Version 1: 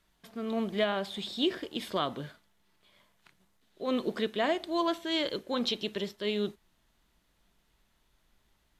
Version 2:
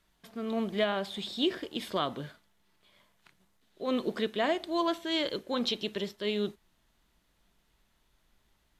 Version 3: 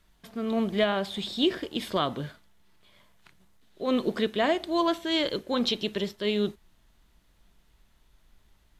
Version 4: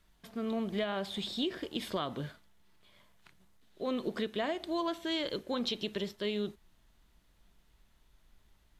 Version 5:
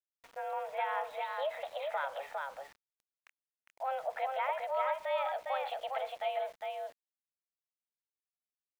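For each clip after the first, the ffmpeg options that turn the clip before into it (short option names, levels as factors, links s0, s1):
-af anull
-af "lowshelf=f=110:g=8,volume=1.5"
-af "acompressor=threshold=0.0447:ratio=4,volume=0.668"
-af "aecho=1:1:406:0.668,highpass=f=280:t=q:w=0.5412,highpass=f=280:t=q:w=1.307,lowpass=f=2500:t=q:w=0.5176,lowpass=f=2500:t=q:w=0.7071,lowpass=f=2500:t=q:w=1.932,afreqshift=270,aeval=exprs='val(0)*gte(abs(val(0)),0.00211)':c=same"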